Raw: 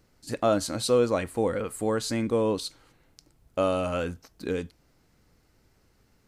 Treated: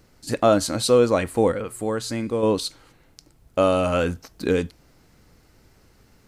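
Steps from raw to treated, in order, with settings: in parallel at -3 dB: gain riding within 4 dB 0.5 s; 1.52–2.43 s: on the sum: feedback comb 120 Hz, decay 0.93 s, harmonics odd, mix 50%; trim +2 dB

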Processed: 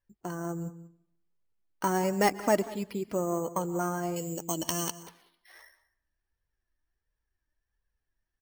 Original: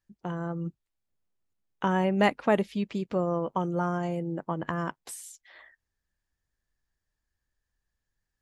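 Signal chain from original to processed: self-modulated delay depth 0.052 ms; vibrato 0.87 Hz 5.9 cents; careless resampling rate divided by 6×, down filtered, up hold; on a send at -18.5 dB: reverberation RT60 0.70 s, pre-delay 117 ms; on the sum: flange 1.4 Hz, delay 1.8 ms, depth 1.6 ms, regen +40%; 4.16–5.03 s: resonant high shelf 2.2 kHz +11 dB, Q 3; delay 189 ms -19 dB; trim +2.5 dB

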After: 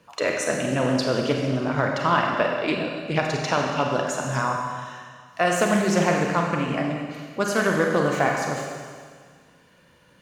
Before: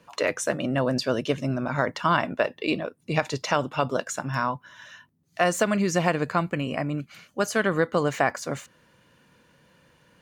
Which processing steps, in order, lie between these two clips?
Schroeder reverb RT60 1.8 s, combs from 31 ms, DRR 0.5 dB; loudspeaker Doppler distortion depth 0.18 ms

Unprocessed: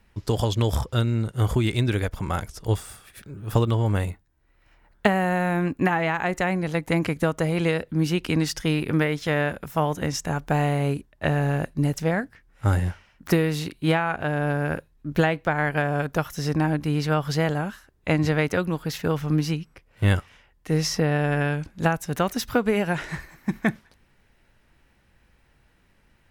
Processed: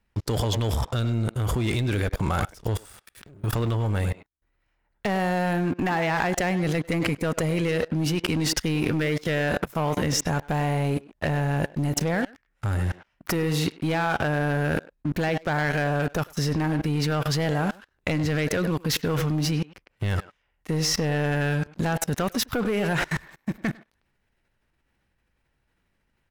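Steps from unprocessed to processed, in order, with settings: waveshaping leveller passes 3; speakerphone echo 100 ms, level -9 dB; level held to a coarse grid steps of 24 dB

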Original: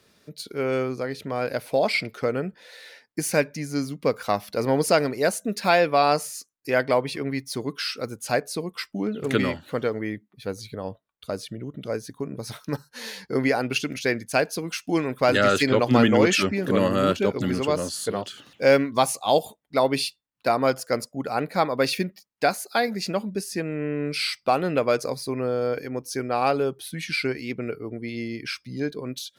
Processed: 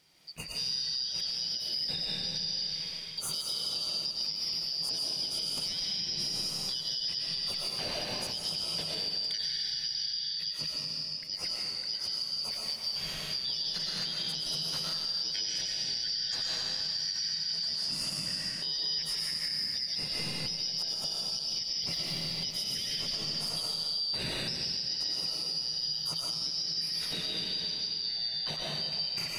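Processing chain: four frequency bands reordered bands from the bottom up 4321; peaking EQ 160 Hz +13.5 dB 0.37 oct; reverberation RT60 2.2 s, pre-delay 75 ms, DRR -3.5 dB; compression, threshold -24 dBFS, peak gain reduction 14.5 dB; peak limiter -18.5 dBFS, peak gain reduction 6 dB; trim -5.5 dB

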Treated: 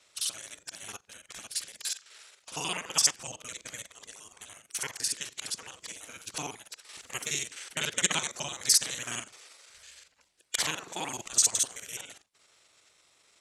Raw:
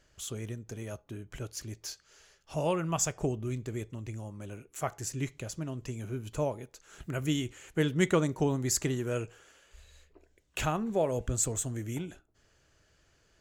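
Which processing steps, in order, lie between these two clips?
time reversed locally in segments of 42 ms; frequency weighting ITU-R 468; spectral gate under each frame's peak -10 dB weak; trim +5.5 dB

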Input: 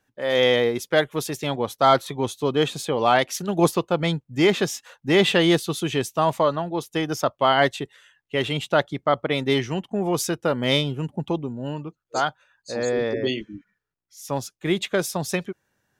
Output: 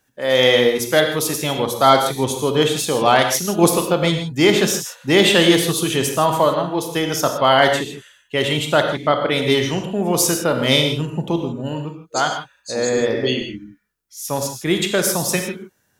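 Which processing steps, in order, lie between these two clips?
treble shelf 5.3 kHz +10 dB; reverberation, pre-delay 22 ms, DRR 4 dB; trim +3 dB

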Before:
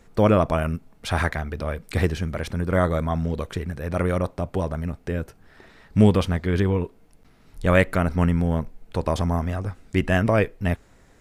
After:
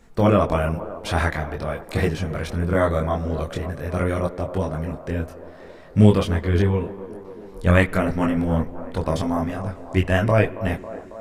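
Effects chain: chorus voices 4, 0.44 Hz, delay 23 ms, depth 4 ms; feedback echo behind a band-pass 274 ms, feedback 71%, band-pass 570 Hz, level -12 dB; spring tank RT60 1.8 s, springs 47/51 ms, chirp 75 ms, DRR 20 dB; trim +4 dB

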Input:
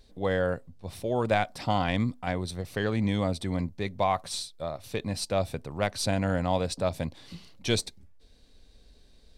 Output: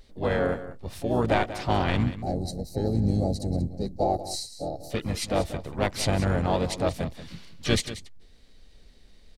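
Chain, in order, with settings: harmony voices -12 st -6 dB, -4 st -7 dB, +4 st -10 dB; time-frequency box 2.05–4.90 s, 880–3800 Hz -23 dB; delay 186 ms -13.5 dB

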